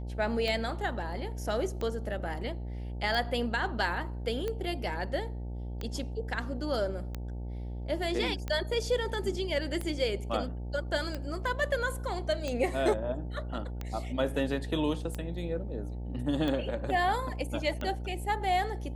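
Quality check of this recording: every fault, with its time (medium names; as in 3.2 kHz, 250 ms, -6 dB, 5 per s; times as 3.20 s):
buzz 60 Hz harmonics 15 -37 dBFS
tick 45 rpm -21 dBFS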